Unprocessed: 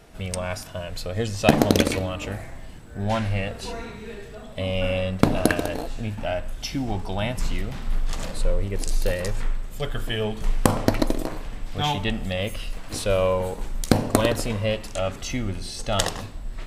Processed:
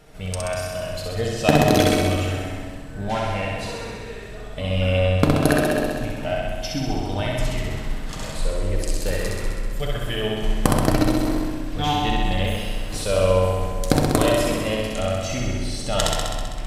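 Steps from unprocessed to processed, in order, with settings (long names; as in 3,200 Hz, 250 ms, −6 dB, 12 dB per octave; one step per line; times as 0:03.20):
flutter between parallel walls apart 11.1 metres, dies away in 1.5 s
on a send at −6 dB: convolution reverb RT60 1.7 s, pre-delay 7 ms
on the sum: level −1.5 dB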